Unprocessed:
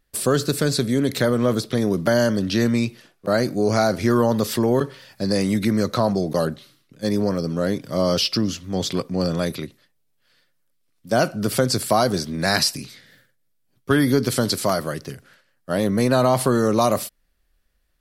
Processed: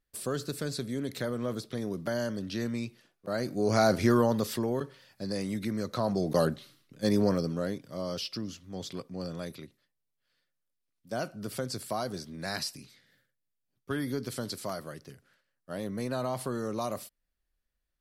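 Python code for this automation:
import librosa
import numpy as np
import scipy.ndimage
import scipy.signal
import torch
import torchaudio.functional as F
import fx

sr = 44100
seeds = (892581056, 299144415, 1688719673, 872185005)

y = fx.gain(x, sr, db=fx.line((3.29, -13.5), (3.93, -3.0), (4.79, -12.5), (5.87, -12.5), (6.37, -4.0), (7.33, -4.0), (7.9, -15.0)))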